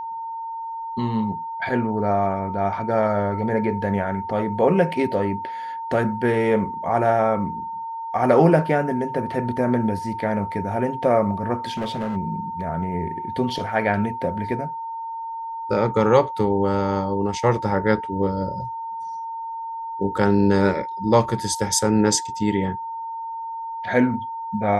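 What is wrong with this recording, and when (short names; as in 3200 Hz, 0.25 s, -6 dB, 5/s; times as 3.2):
tone 910 Hz -28 dBFS
11.65–12.17 clipped -22.5 dBFS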